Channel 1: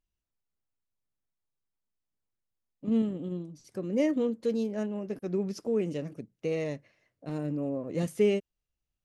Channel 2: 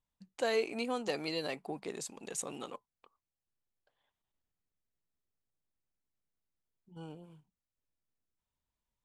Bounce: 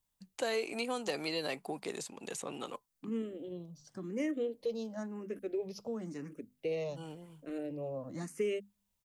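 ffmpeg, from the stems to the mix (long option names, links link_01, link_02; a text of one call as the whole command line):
ffmpeg -i stem1.wav -i stem2.wav -filter_complex "[0:a]bandreject=frequency=50:width_type=h:width=6,bandreject=frequency=100:width_type=h:width=6,bandreject=frequency=150:width_type=h:width=6,bandreject=frequency=200:width_type=h:width=6,bandreject=frequency=250:width_type=h:width=6,asplit=2[link_01][link_02];[link_02]afreqshift=0.95[link_03];[link_01][link_03]amix=inputs=2:normalize=1,adelay=200,volume=-1.5dB[link_04];[1:a]highshelf=frequency=5400:gain=11,volume=1.5dB[link_05];[link_04][link_05]amix=inputs=2:normalize=0,acrossover=split=310|3600[link_06][link_07][link_08];[link_06]acompressor=threshold=-45dB:ratio=4[link_09];[link_07]acompressor=threshold=-32dB:ratio=4[link_10];[link_08]acompressor=threshold=-47dB:ratio=4[link_11];[link_09][link_10][link_11]amix=inputs=3:normalize=0" out.wav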